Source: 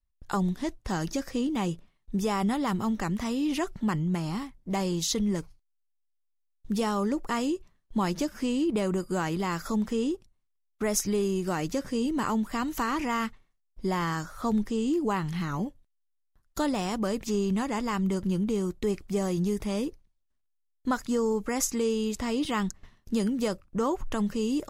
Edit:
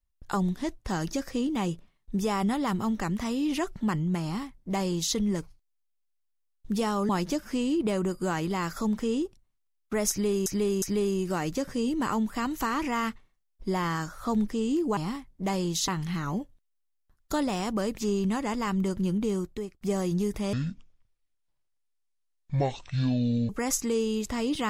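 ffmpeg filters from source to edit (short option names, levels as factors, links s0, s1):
-filter_complex "[0:a]asplit=9[s0][s1][s2][s3][s4][s5][s6][s7][s8];[s0]atrim=end=7.092[s9];[s1]atrim=start=7.978:end=11.352[s10];[s2]atrim=start=10.988:end=11.352[s11];[s3]atrim=start=10.988:end=15.142[s12];[s4]atrim=start=4.238:end=5.152[s13];[s5]atrim=start=15.138:end=19.07,asetpts=PTS-STARTPTS,afade=t=out:st=3.492:d=0.44[s14];[s6]atrim=start=19.07:end=19.794,asetpts=PTS-STARTPTS,afade=t=in:d=0.004:c=hsin[s15];[s7]atrim=start=19.79:end=21.39,asetpts=PTS-STARTPTS,asetrate=23814,aresample=44100[s16];[s8]atrim=start=21.386[s17];[s9][s10]acrossfade=d=0.004:c1=hsin:c2=hsin[s18];[s18][s11]acrossfade=d=0.004:c1=hsin:c2=hsin[s19];[s19][s12]acrossfade=d=0.004:c1=hsin:c2=hsin[s20];[s20][s13]acrossfade=d=0.004:c1=hsin:c2=hsin[s21];[s14][s15]concat=n=2:v=0:a=1[s22];[s21][s22]acrossfade=d=0.004:c1=hsin:c2=hsin[s23];[s23][s16]acrossfade=d=0.004:c1=hsin:c2=hsin[s24];[s24][s17]acrossfade=d=0.004:c1=hsin:c2=hsin"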